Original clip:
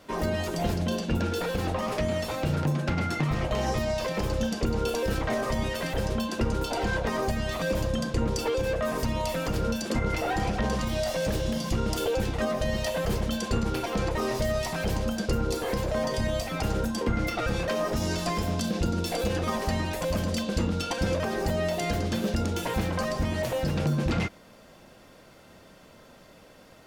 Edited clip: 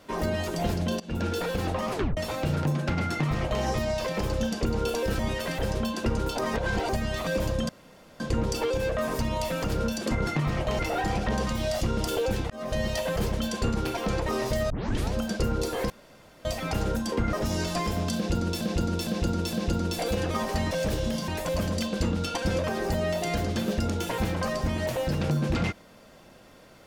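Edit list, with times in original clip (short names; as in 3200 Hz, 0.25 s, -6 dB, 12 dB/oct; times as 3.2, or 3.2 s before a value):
1–1.26 fade in, from -18.5 dB
1.92 tape stop 0.25 s
3.11–3.63 copy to 10.11
5.19–5.54 cut
6.74–7.24 reverse
8.04 insert room tone 0.51 s
11.13–11.7 move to 19.84
12.39–12.65 fade in
14.59 tape start 0.43 s
15.79–16.34 room tone
17.22–17.84 cut
18.66–19.12 loop, 4 plays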